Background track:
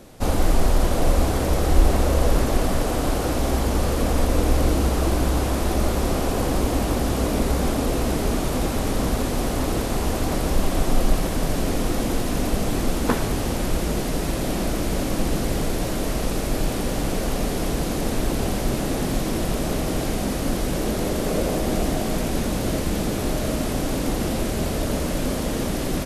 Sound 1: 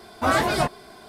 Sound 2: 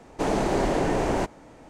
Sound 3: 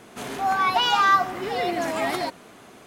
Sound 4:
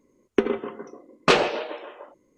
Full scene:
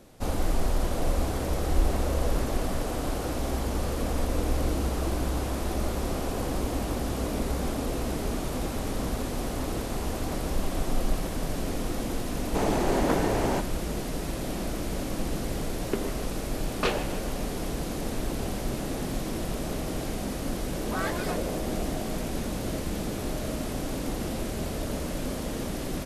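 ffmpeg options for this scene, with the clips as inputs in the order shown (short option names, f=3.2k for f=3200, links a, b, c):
-filter_complex "[0:a]volume=-7.5dB[a];[1:a]equalizer=f=1.7k:t=o:w=0.77:g=4[b];[2:a]atrim=end=1.69,asetpts=PTS-STARTPTS,volume=-2.5dB,afade=t=in:d=0.004:c=hsin,afade=t=out:st=1.686:d=0.004:c=hsin,adelay=12350[c];[4:a]atrim=end=2.37,asetpts=PTS-STARTPTS,volume=-10dB,afade=t=in:d=0.004:c=hsin,afade=t=out:st=2.366:d=0.004:c=hsin,adelay=15550[d];[b]atrim=end=1.08,asetpts=PTS-STARTPTS,volume=-13dB,afade=t=in:d=0.004:c=hsin,afade=t=out:st=1.076:d=0.004:c=hsin,adelay=20690[e];[a][c][d][e]amix=inputs=4:normalize=0"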